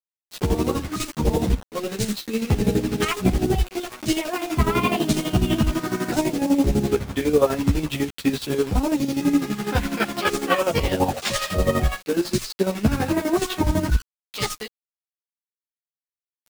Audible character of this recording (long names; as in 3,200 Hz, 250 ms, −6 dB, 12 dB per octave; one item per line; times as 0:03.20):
a quantiser's noise floor 6 bits, dither none
chopped level 12 Hz, depth 65%, duty 40%
a shimmering, thickened sound